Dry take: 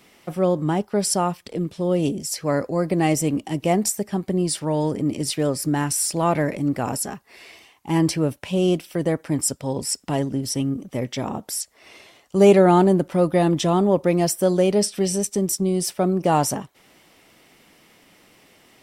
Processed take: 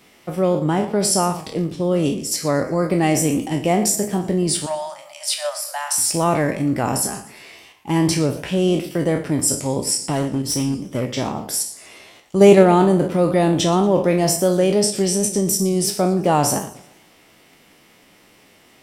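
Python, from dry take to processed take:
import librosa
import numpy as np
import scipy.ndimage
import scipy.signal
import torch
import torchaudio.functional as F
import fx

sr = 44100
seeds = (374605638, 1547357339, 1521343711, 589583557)

p1 = fx.spec_trails(x, sr, decay_s=0.4)
p2 = fx.cheby1_highpass(p1, sr, hz=580.0, order=10, at=(4.66, 5.98))
p3 = fx.level_steps(p2, sr, step_db=13)
p4 = p2 + (p3 * librosa.db_to_amplitude(-2.0))
p5 = fx.overload_stage(p4, sr, gain_db=15.0, at=(10.12, 11.06))
p6 = fx.echo_warbled(p5, sr, ms=118, feedback_pct=39, rate_hz=2.8, cents=193, wet_db=-17)
y = p6 * librosa.db_to_amplitude(-1.0)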